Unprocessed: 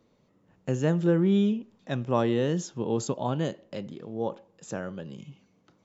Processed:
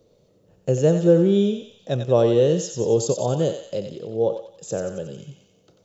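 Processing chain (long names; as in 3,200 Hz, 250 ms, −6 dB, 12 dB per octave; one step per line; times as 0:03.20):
octave-band graphic EQ 250/500/1,000/2,000 Hz −10/+8/−11/−11 dB
feedback echo with a high-pass in the loop 91 ms, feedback 59%, high-pass 1,000 Hz, level −5.5 dB
level +8.5 dB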